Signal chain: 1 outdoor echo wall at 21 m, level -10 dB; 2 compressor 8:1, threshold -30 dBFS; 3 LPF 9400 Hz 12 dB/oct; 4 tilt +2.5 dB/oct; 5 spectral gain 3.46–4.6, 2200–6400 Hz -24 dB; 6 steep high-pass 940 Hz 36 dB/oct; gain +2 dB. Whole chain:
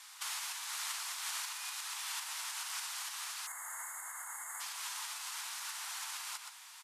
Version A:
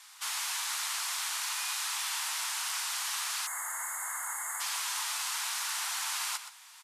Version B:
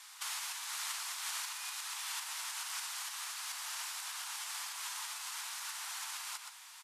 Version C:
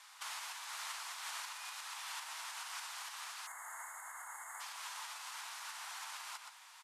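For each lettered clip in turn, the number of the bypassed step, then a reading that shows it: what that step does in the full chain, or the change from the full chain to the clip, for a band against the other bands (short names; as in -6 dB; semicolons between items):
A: 2, mean gain reduction 7.0 dB; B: 5, momentary loudness spread change -2 LU; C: 4, 8 kHz band -6.0 dB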